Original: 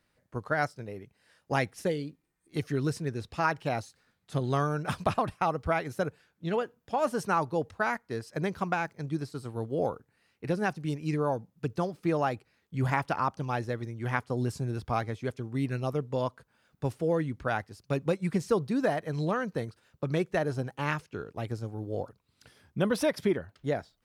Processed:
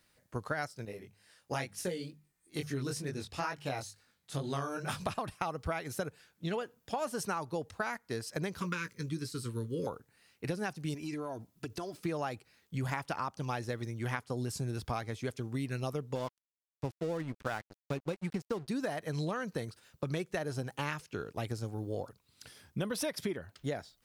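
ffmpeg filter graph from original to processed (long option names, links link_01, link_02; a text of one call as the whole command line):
ffmpeg -i in.wav -filter_complex "[0:a]asettb=1/sr,asplit=3[link_01][link_02][link_03];[link_01]atrim=end=0.854[link_04];[link_02]atrim=start=0.85:end=5.07,asetpts=PTS-STARTPTS,afade=type=in:duration=0.004:curve=qsin,afade=type=out:start_time=4.216:duration=0.004:curve=qsin,bandreject=frequency=50:width_type=h:width=6,bandreject=frequency=100:width_type=h:width=6,bandreject=frequency=150:width_type=h:width=6,bandreject=frequency=200:width_type=h:width=6,flanger=delay=19.5:depth=4.3:speed=2.2[link_05];[link_03]atrim=start=5.066[link_06];[link_04][link_05]acrossfade=duration=0.004:curve1=hsin:curve2=qsin[link_07];[link_07][link_06]acrossfade=duration=0.004:curve1=qsin:curve2=hsin,asettb=1/sr,asplit=3[link_08][link_09][link_10];[link_08]atrim=end=8.614[link_11];[link_09]atrim=start=8.61:end=9.87,asetpts=PTS-STARTPTS,afade=type=in:duration=0.004:curve=qsin,afade=type=out:start_time=1.256:duration=0.004:curve=qsin,asuperstop=centerf=720:order=20:qfactor=2.3,equalizer=frequency=740:width=1.7:gain=-11.5,asplit=2[link_12][link_13];[link_13]adelay=17,volume=-10dB[link_14];[link_12][link_14]amix=inputs=2:normalize=0,atrim=end_sample=55566[link_15];[link_10]atrim=start=9.866[link_16];[link_11][link_15]acrossfade=duration=0.004:curve1=hsin:curve2=qsin[link_17];[link_17][link_16]acrossfade=duration=0.004:curve1=qsin:curve2=hsin,asettb=1/sr,asplit=3[link_18][link_19][link_20];[link_18]atrim=end=10.944[link_21];[link_19]atrim=start=10.94:end=11.98,asetpts=PTS-STARTPTS,afade=type=in:duration=0.004:curve=qsin,afade=type=out:start_time=1.036:duration=0.004:curve=qsin,aecho=1:1:3:0.54,atrim=end_sample=45864,acompressor=threshold=-35dB:ratio=10:attack=3.2:release=140:knee=1:detection=peak[link_22];[link_20]atrim=start=11.976[link_23];[link_21][link_22]acrossfade=duration=0.004:curve1=hsin:curve2=qsin[link_24];[link_24][link_23]acrossfade=duration=0.004:curve1=qsin:curve2=hsin,asettb=1/sr,asplit=3[link_25][link_26][link_27];[link_25]atrim=end=16.154[link_28];[link_26]atrim=start=16.15:end=18.68,asetpts=PTS-STARTPTS,afade=type=in:duration=0.004:curve=qsin,afade=type=out:start_time=2.526:duration=0.004:curve=qsin,aemphasis=mode=reproduction:type=50kf,aeval=exprs='sgn(val(0))*max(abs(val(0))-0.0075,0)':channel_layout=same[link_29];[link_27]atrim=start=18.676[link_30];[link_28][link_29]acrossfade=duration=0.004:curve1=hsin:curve2=qsin[link_31];[link_31][link_30]acrossfade=duration=0.004:curve1=qsin:curve2=hsin,highshelf=frequency=3100:gain=10,acompressor=threshold=-32dB:ratio=6" out.wav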